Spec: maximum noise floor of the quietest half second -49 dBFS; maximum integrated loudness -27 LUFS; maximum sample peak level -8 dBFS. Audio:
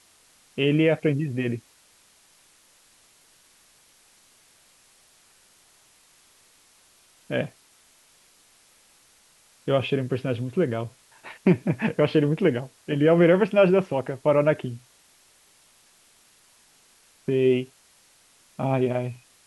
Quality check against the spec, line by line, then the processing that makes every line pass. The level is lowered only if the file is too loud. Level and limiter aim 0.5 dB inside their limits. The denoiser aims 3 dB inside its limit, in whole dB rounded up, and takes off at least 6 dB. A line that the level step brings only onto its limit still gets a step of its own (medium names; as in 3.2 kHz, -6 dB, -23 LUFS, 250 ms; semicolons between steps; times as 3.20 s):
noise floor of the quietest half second -59 dBFS: pass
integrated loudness -23.5 LUFS: fail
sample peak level -7.0 dBFS: fail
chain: trim -4 dB